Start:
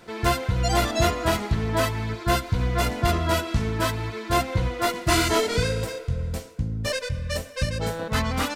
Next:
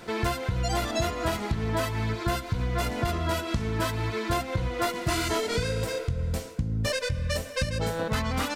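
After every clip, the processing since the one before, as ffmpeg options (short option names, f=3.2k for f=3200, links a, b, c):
-af "acompressor=threshold=-29dB:ratio=6,volume=4.5dB"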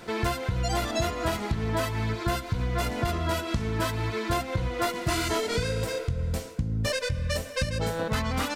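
-af anull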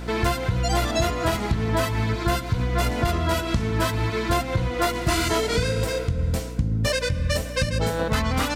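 -af "aeval=exprs='val(0)+0.0141*(sin(2*PI*60*n/s)+sin(2*PI*2*60*n/s)/2+sin(2*PI*3*60*n/s)/3+sin(2*PI*4*60*n/s)/4+sin(2*PI*5*60*n/s)/5)':c=same,volume=4.5dB"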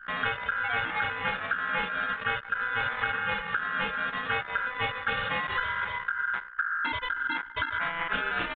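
-af "aeval=exprs='val(0)*sin(2*PI*1500*n/s)':c=same,aresample=8000,aresample=44100,anlmdn=25.1,volume=-4dB"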